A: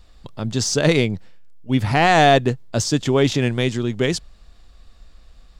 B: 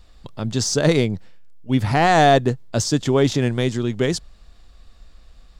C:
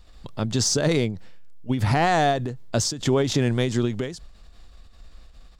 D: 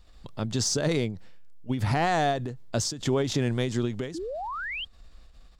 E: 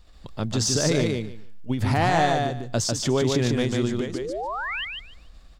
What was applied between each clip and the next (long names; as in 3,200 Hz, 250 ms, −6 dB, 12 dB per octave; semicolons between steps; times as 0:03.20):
dynamic equaliser 2,600 Hz, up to −6 dB, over −35 dBFS, Q 1.7
brickwall limiter −13.5 dBFS, peak gain reduction 8.5 dB; every ending faded ahead of time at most 100 dB per second; level +1.5 dB
sound drawn into the spectrogram rise, 0:04.14–0:04.85, 300–3,300 Hz −29 dBFS; level −4.5 dB
repeating echo 147 ms, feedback 18%, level −3.5 dB; level +2.5 dB